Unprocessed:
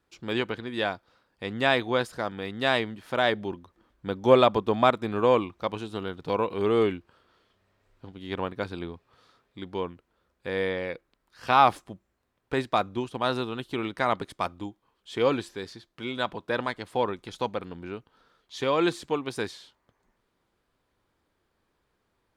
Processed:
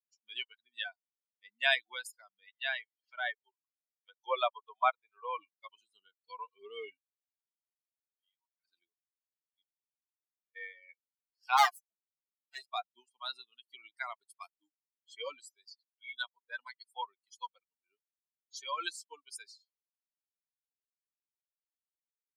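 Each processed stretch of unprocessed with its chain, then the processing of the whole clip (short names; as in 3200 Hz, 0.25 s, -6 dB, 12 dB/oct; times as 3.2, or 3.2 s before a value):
2.48–5.38 HPF 430 Hz + air absorption 140 m + mismatched tape noise reduction encoder only
8.11–8.65 inverse Chebyshev high-pass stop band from 230 Hz, stop band 50 dB + compressor 4:1, threshold -40 dBFS + detuned doubles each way 16 cents
9.62–10.56 compressor 8:1, threshold -44 dBFS + Doppler distortion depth 0.35 ms
11.57–12.66 minimum comb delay 5.8 ms + notches 60/120/180/240/300/360/420/480 Hz
whole clip: per-bin expansion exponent 3; HPF 680 Hz 24 dB/oct; tilt +2 dB/oct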